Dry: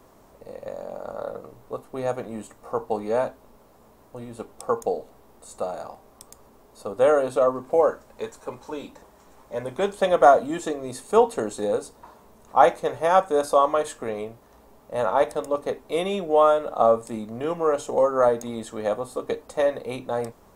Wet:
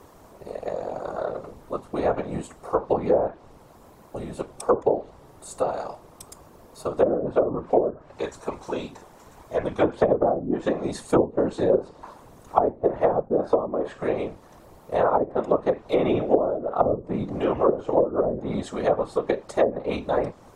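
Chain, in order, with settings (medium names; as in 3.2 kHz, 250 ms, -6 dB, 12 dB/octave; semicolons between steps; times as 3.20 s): whisper effect; low-pass that closes with the level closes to 310 Hz, closed at -16 dBFS; trim +4 dB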